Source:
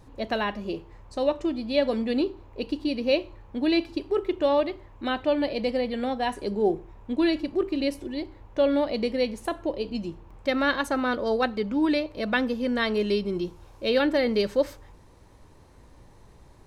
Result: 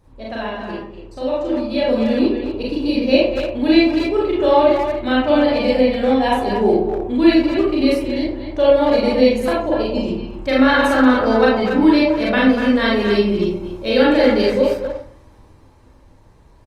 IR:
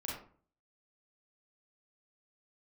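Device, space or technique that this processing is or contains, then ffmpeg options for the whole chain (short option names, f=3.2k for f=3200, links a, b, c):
speakerphone in a meeting room: -filter_complex "[1:a]atrim=start_sample=2205[a];[0:a][a]afir=irnorm=-1:irlink=0,asplit=2[b][c];[c]adelay=240,highpass=300,lowpass=3.4k,asoftclip=type=hard:threshold=-18.5dB,volume=-6dB[d];[b][d]amix=inputs=2:normalize=0,dynaudnorm=f=190:g=21:m=12dB" -ar 48000 -c:a libopus -b:a 32k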